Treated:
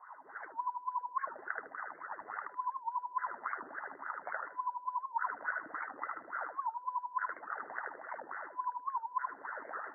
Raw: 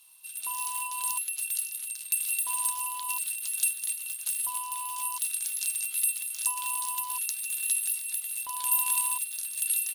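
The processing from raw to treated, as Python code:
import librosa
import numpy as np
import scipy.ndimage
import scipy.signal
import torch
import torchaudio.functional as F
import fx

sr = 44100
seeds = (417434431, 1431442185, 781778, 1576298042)

y = scipy.signal.sosfilt(scipy.signal.cheby1(10, 1.0, 2000.0, 'lowpass', fs=sr, output='sos'), x)
y = fx.env_lowpass_down(y, sr, base_hz=1200.0, full_db=-36.5)
y = fx.peak_eq(y, sr, hz=990.0, db=7.5, octaves=2.8)
y = fx.over_compress(y, sr, threshold_db=-41.0, ratio=-0.5)
y = fx.wah_lfo(y, sr, hz=3.5, low_hz=270.0, high_hz=1500.0, q=8.7)
y = fx.echo_feedback(y, sr, ms=77, feedback_pct=21, wet_db=-3.5)
y = fx.record_warp(y, sr, rpm=78.0, depth_cents=160.0)
y = y * librosa.db_to_amplitude(17.5)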